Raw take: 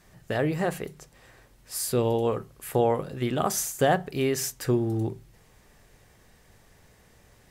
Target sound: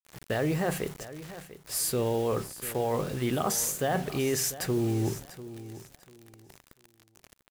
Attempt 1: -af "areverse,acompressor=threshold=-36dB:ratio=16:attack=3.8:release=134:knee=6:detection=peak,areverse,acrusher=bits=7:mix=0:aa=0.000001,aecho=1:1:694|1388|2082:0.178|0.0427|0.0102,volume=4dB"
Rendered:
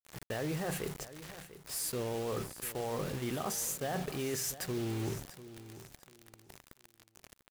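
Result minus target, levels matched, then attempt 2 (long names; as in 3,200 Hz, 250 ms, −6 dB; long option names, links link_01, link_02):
downward compressor: peak gain reduction +8.5 dB
-af "areverse,acompressor=threshold=-27dB:ratio=16:attack=3.8:release=134:knee=6:detection=peak,areverse,acrusher=bits=7:mix=0:aa=0.000001,aecho=1:1:694|1388|2082:0.178|0.0427|0.0102,volume=4dB"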